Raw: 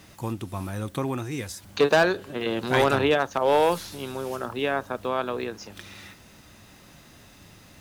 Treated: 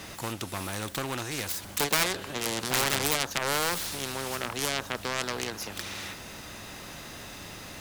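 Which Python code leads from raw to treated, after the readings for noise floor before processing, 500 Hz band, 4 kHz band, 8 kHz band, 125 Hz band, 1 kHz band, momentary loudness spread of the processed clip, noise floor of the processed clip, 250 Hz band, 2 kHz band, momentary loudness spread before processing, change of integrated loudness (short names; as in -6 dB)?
-52 dBFS, -11.0 dB, +3.5 dB, +11.5 dB, -5.5 dB, -6.0 dB, 16 LU, -43 dBFS, -7.0 dB, -2.0 dB, 14 LU, -4.0 dB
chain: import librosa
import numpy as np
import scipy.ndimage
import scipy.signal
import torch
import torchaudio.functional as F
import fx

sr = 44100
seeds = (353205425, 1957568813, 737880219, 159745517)

y = fx.self_delay(x, sr, depth_ms=0.3)
y = fx.spectral_comp(y, sr, ratio=2.0)
y = y * 10.0 ** (6.0 / 20.0)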